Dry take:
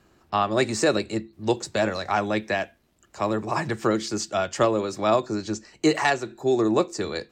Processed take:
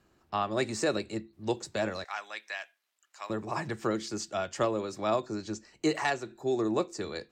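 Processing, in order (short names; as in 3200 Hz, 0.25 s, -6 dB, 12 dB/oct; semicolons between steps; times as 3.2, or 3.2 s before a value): 2.04–3.3 HPF 1300 Hz 12 dB/oct; gain -7.5 dB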